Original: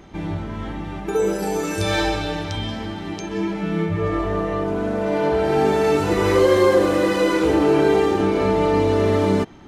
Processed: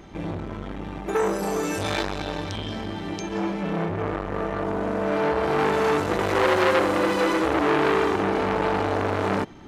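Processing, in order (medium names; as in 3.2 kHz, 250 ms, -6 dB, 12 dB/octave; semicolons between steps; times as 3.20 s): transformer saturation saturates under 1.7 kHz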